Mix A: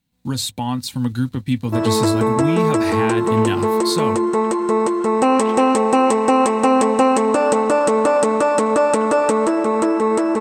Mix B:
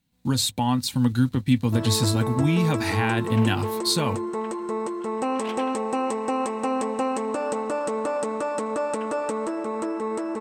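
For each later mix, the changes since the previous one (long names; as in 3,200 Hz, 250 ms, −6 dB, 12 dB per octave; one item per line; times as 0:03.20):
first sound −11.0 dB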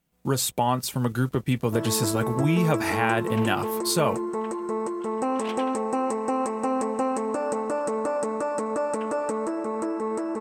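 speech: add thirty-one-band graphic EQ 100 Hz −12 dB, 250 Hz −8 dB, 400 Hz +12 dB, 630 Hz +10 dB, 1,250 Hz +7 dB, 4,000 Hz −10 dB, 12,500 Hz +6 dB
first sound: add parametric band 3,300 Hz −12.5 dB 0.73 octaves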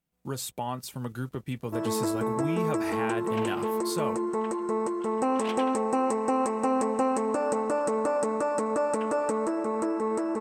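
speech −9.5 dB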